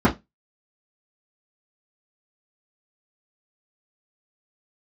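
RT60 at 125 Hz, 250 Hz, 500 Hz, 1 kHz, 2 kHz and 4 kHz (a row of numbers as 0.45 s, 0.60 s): 0.25 s, 0.25 s, 0.20 s, 0.15 s, 0.15 s, 0.15 s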